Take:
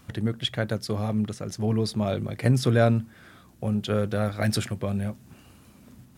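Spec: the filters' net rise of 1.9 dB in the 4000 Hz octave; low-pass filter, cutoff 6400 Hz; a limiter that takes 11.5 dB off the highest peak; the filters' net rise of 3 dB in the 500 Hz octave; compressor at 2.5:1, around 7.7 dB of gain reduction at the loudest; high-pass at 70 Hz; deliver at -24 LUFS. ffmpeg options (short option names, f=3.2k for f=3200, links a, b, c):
-af "highpass=70,lowpass=6.4k,equalizer=f=500:t=o:g=3.5,equalizer=f=4k:t=o:g=3,acompressor=threshold=-26dB:ratio=2.5,volume=9dB,alimiter=limit=-14dB:level=0:latency=1"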